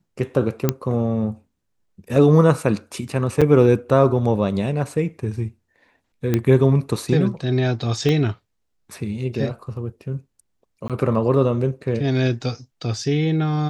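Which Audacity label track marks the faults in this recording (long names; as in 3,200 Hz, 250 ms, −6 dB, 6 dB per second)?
0.690000	0.690000	click −4 dBFS
3.410000	3.420000	drop-out 5.8 ms
6.340000	6.340000	click −7 dBFS
8.090000	8.090000	click −10 dBFS
10.880000	10.900000	drop-out 17 ms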